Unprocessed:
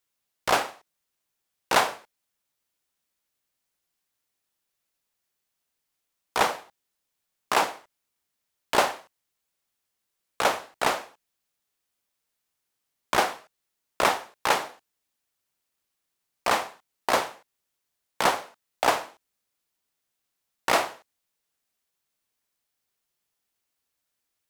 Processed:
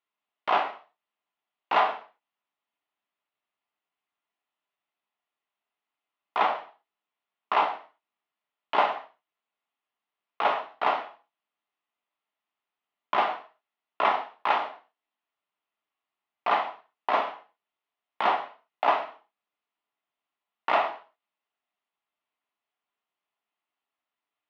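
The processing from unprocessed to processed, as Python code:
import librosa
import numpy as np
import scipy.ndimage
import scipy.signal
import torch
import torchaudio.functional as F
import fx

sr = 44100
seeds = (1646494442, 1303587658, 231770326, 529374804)

p1 = np.clip(x, -10.0 ** (-19.0 / 20.0), 10.0 ** (-19.0 / 20.0))
p2 = x + (p1 * 10.0 ** (-4.0 / 20.0))
p3 = fx.cabinet(p2, sr, low_hz=350.0, low_slope=12, high_hz=2700.0, hz=(350.0, 520.0, 1600.0, 2300.0), db=(-8, -10, -9, -5))
p4 = fx.rev_gated(p3, sr, seeds[0], gate_ms=160, shape='falling', drr_db=4.0)
y = p4 * 10.0 ** (-2.0 / 20.0)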